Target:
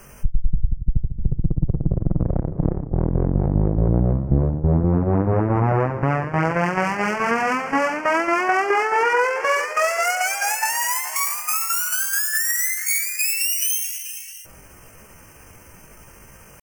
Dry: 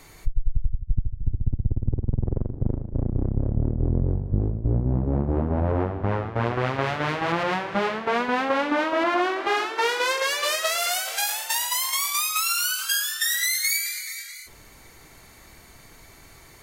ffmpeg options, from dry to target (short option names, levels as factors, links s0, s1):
-af "asuperstop=centerf=2700:order=4:qfactor=1.3,asetrate=60591,aresample=44100,atempo=0.727827,volume=1.68"